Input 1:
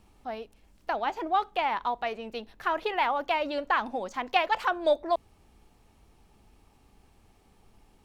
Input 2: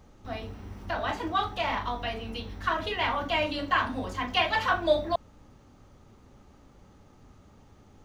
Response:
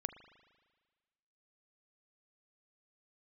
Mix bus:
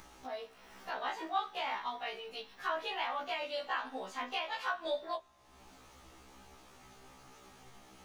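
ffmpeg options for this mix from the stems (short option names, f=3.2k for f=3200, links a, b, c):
-filter_complex "[0:a]alimiter=limit=-19dB:level=0:latency=1:release=284,flanger=delay=22.5:depth=4.8:speed=0.41,volume=-2dB[a];[1:a]highpass=f=1.4k:p=1,acompressor=threshold=-31dB:ratio=6,volume=-6.5dB,asplit=2[b][c];[c]volume=-5.5dB[d];[2:a]atrim=start_sample=2205[e];[d][e]afir=irnorm=-1:irlink=0[f];[a][b][f]amix=inputs=3:normalize=0,lowshelf=f=230:g=-7.5,acompressor=mode=upward:threshold=-42dB:ratio=2.5,afftfilt=real='re*1.73*eq(mod(b,3),0)':imag='im*1.73*eq(mod(b,3),0)':win_size=2048:overlap=0.75"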